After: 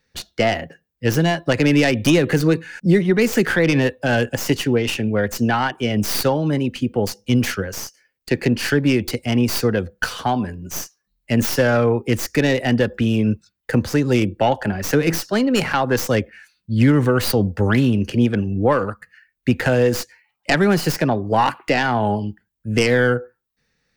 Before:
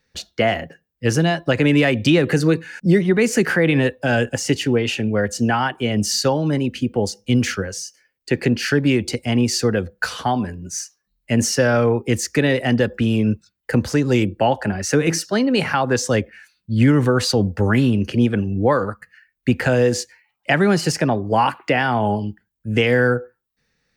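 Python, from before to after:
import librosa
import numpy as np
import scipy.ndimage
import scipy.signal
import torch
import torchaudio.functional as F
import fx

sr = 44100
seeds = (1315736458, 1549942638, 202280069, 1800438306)

y = fx.tracing_dist(x, sr, depth_ms=0.16)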